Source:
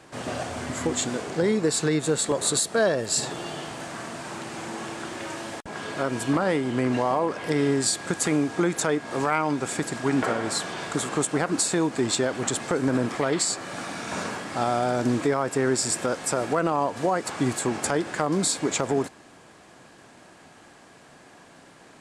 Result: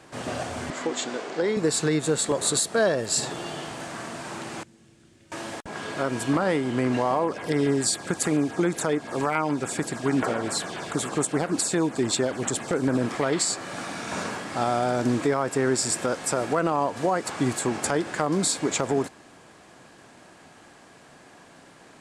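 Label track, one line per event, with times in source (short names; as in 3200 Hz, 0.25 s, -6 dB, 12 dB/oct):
0.700000	1.570000	BPF 310–5900 Hz
4.630000	5.320000	passive tone stack bass-middle-treble 10-0-1
7.240000	13.010000	LFO notch saw down 7.1 Hz 800–7300 Hz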